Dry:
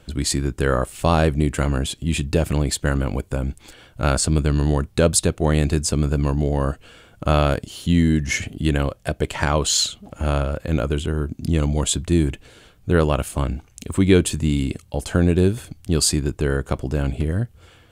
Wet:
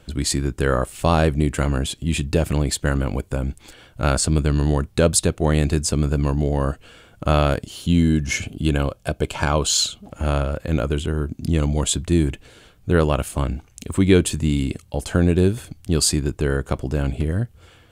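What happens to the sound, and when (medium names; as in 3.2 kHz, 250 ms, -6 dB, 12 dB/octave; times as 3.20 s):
7.82–10.03 s: Butterworth band-stop 1.9 kHz, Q 5.5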